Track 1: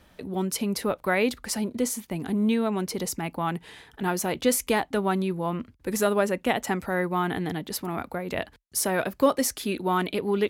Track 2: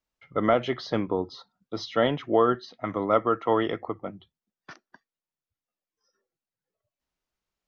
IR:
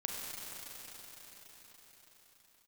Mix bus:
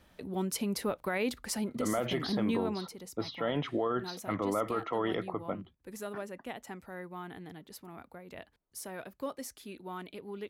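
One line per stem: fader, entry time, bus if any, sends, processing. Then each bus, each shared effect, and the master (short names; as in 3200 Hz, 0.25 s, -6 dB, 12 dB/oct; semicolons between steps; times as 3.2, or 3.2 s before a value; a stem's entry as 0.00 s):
2.68 s -5.5 dB -> 2.96 s -17 dB, 0.00 s, no send, dry
+1.0 dB, 1.45 s, no send, low-pass opened by the level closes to 960 Hz, open at -23 dBFS; limiter -18 dBFS, peak gain reduction 8.5 dB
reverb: off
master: limiter -22 dBFS, peak gain reduction 8.5 dB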